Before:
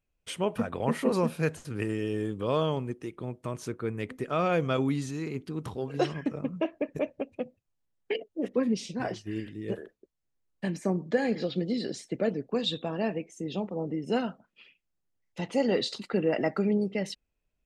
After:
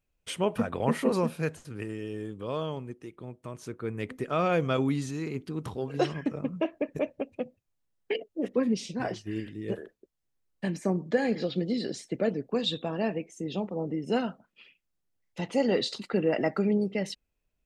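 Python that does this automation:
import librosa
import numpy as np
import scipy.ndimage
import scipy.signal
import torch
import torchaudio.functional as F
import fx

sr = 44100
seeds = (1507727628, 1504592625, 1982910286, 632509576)

y = fx.gain(x, sr, db=fx.line((0.94, 1.5), (1.86, -5.5), (3.54, -5.5), (4.05, 0.5)))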